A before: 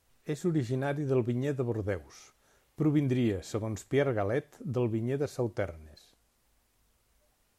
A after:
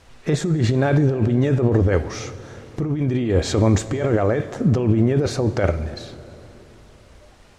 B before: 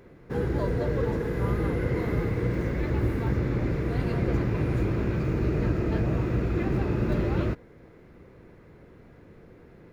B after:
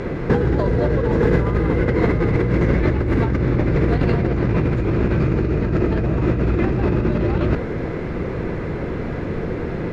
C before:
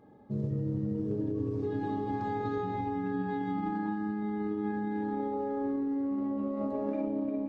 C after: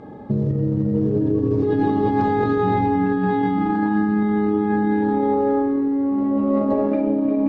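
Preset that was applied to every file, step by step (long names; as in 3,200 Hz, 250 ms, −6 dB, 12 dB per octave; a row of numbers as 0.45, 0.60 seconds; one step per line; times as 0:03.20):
compressor whose output falls as the input rises −35 dBFS, ratio −1
high-frequency loss of the air 85 metres
dense smooth reverb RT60 3.9 s, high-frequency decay 0.55×, DRR 14 dB
loudness normalisation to −20 LKFS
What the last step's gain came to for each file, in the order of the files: +17.0, +17.5, +16.0 decibels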